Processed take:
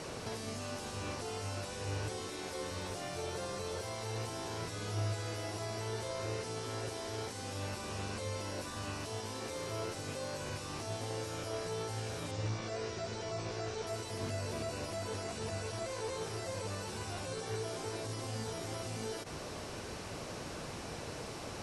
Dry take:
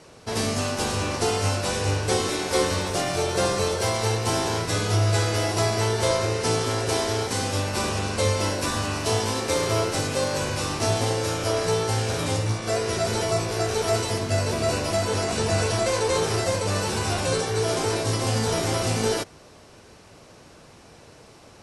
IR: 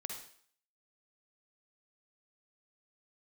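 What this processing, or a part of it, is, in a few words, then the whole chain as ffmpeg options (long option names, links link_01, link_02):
de-esser from a sidechain: -filter_complex "[0:a]asplit=2[link_01][link_02];[link_02]highpass=frequency=5500:poles=1,apad=whole_len=953690[link_03];[link_01][link_03]sidechaincompress=threshold=-54dB:ratio=12:attack=0.84:release=37,asettb=1/sr,asplit=3[link_04][link_05][link_06];[link_04]atrim=end=12.314[link_07];[link_05]atrim=start=12.31:end=13.87,asetpts=PTS-STARTPTS,afade=type=in:duration=0.004:curve=qsin,afade=type=out:start_time=1.556:duration=0.004:curve=qsin,lowpass=frequency=7100:width=0.5412,lowpass=frequency=7100:width=1.3066[link_08];[link_06]atrim=start=13.866[link_09];[link_07][link_08]acrossfade=duration=0.004:curve1=hsin:curve2=qsin[link_10];[link_10][link_09]acrossfade=duration=0.004:curve1=qsin:curve2=hsin,volume=7dB"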